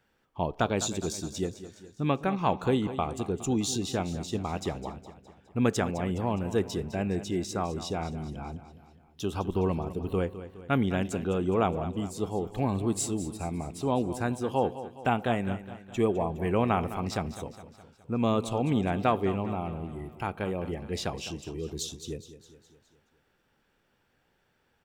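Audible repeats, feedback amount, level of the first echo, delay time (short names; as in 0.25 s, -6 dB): 4, 53%, -13.5 dB, 0.207 s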